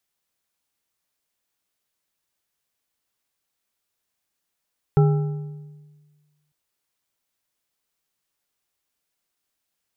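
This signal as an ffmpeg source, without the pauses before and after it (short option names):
-f lavfi -i "aevalsrc='0.266*pow(10,-3*t/1.51)*sin(2*PI*149*t)+0.119*pow(10,-3*t/1.114)*sin(2*PI*410.8*t)+0.0531*pow(10,-3*t/0.91)*sin(2*PI*805.2*t)+0.0237*pow(10,-3*t/0.783)*sin(2*PI*1331*t)':d=1.55:s=44100"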